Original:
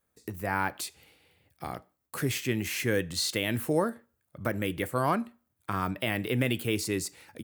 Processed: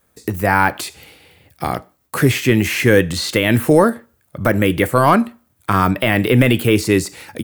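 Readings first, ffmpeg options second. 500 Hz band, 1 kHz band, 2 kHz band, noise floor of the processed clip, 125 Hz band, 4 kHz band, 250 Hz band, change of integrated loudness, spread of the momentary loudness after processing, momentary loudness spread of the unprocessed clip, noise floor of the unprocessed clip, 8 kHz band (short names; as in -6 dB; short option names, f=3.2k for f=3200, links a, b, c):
+15.0 dB, +15.0 dB, +14.5 dB, -62 dBFS, +15.5 dB, +10.0 dB, +15.5 dB, +14.5 dB, 14 LU, 13 LU, -78 dBFS, +8.5 dB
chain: -filter_complex "[0:a]apsyclip=18dB,acrossover=split=2800[a][b];[b]acompressor=threshold=-22dB:ratio=4:attack=1:release=60[c];[a][c]amix=inputs=2:normalize=0,volume=-2dB"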